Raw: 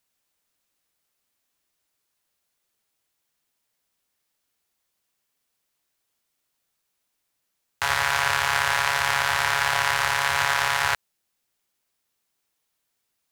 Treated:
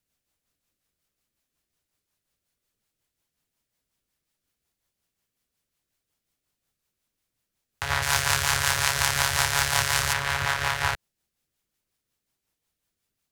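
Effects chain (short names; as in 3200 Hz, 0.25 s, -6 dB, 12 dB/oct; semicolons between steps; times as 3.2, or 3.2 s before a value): 8.02–10.13 tone controls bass +1 dB, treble +11 dB; rotary speaker horn 5.5 Hz; low shelf 220 Hz +11 dB; gain -1 dB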